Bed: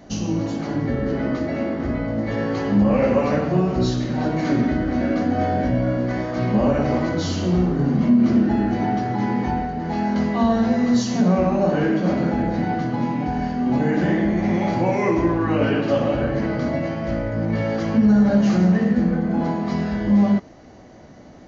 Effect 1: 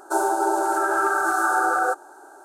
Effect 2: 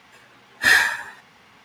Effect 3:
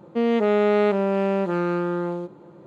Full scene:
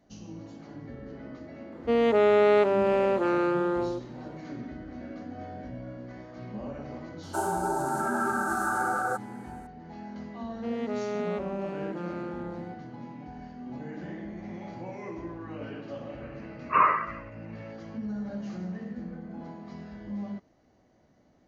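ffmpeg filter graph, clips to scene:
ffmpeg -i bed.wav -i cue0.wav -i cue1.wav -i cue2.wav -filter_complex "[3:a]asplit=2[link_01][link_02];[0:a]volume=-19.5dB[link_03];[link_01]highpass=frequency=260:width=0.5412,highpass=frequency=260:width=1.3066[link_04];[2:a]lowpass=frequency=2500:width_type=q:width=0.5098,lowpass=frequency=2500:width_type=q:width=0.6013,lowpass=frequency=2500:width_type=q:width=0.9,lowpass=frequency=2500:width_type=q:width=2.563,afreqshift=-2900[link_05];[link_04]atrim=end=2.66,asetpts=PTS-STARTPTS,volume=-0.5dB,afade=type=in:duration=0.004:curve=hsin,afade=type=out:start_time=2.656:duration=0.004:curve=hsin,adelay=1720[link_06];[1:a]atrim=end=2.44,asetpts=PTS-STARTPTS,volume=-7.5dB,afade=type=in:duration=0.004:curve=hsin,afade=type=out:start_time=2.436:duration=0.004:curve=hsin,adelay=7230[link_07];[link_02]atrim=end=2.66,asetpts=PTS-STARTPTS,volume=-13dB,afade=type=in:duration=0.004:curve=hsin,afade=type=out:start_time=2.656:duration=0.004:curve=hsin,adelay=10470[link_08];[link_05]atrim=end=1.64,asetpts=PTS-STARTPTS,volume=-5dB,afade=type=in:duration=0.004:curve=hsin,afade=type=out:start_time=1.636:duration=0.004:curve=hsin,adelay=16090[link_09];[link_03][link_06][link_07][link_08][link_09]amix=inputs=5:normalize=0" out.wav

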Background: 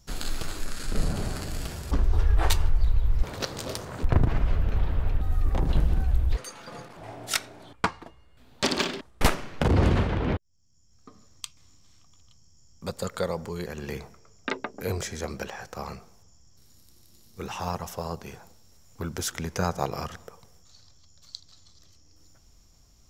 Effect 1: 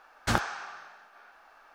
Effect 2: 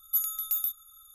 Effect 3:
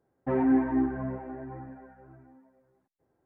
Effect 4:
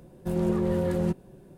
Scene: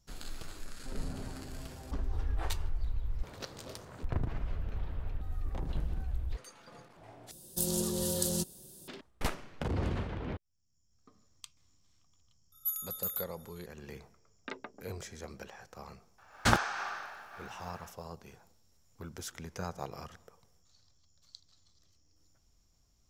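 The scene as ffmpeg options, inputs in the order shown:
ffmpeg -i bed.wav -i cue0.wav -i cue1.wav -i cue2.wav -i cue3.wav -filter_complex "[0:a]volume=-12dB[link_01];[3:a]acompressor=threshold=-38dB:ratio=6:attack=3.2:release=140:knee=1:detection=peak[link_02];[4:a]aexciter=amount=15.3:drive=7.9:freq=3500[link_03];[1:a]dynaudnorm=framelen=110:gausssize=3:maxgain=9.5dB[link_04];[link_01]asplit=2[link_05][link_06];[link_05]atrim=end=7.314[link_07];[link_03]atrim=end=1.57,asetpts=PTS-STARTPTS,volume=-9dB[link_08];[link_06]atrim=start=8.876[link_09];[link_02]atrim=end=3.25,asetpts=PTS-STARTPTS,volume=-10.5dB,afade=type=in:duration=0.004:curve=hsin,afade=type=out:start_time=3.246:duration=0.004:curve=hsin,adelay=590[link_10];[2:a]atrim=end=1.14,asetpts=PTS-STARTPTS,volume=-7dB,afade=type=in:duration=0.004:curve=hsin,afade=type=out:start_time=1.136:duration=0.004:curve=hsin,adelay=552132S[link_11];[link_04]atrim=end=1.74,asetpts=PTS-STARTPTS,volume=-4dB,afade=type=in:duration=0.004:curve=hsin,afade=type=out:start_time=1.736:duration=0.004:curve=hsin,adelay=16180[link_12];[link_07][link_08]acrossfade=duration=0.004:curve1=hsin:curve2=hsin[link_13];[link_13][link_09]acrossfade=duration=0.004:curve1=hsin:curve2=hsin[link_14];[link_14][link_10][link_11][link_12]amix=inputs=4:normalize=0" out.wav

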